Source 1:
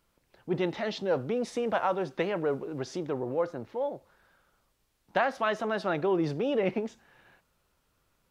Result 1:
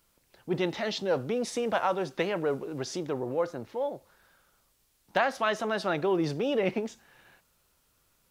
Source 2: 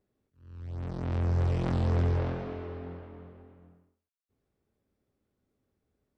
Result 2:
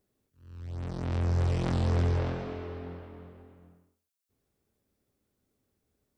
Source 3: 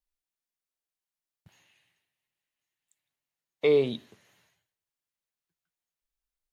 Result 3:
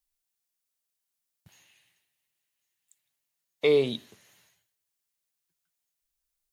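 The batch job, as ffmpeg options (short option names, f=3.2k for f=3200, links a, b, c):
-af "highshelf=f=4k:g=10"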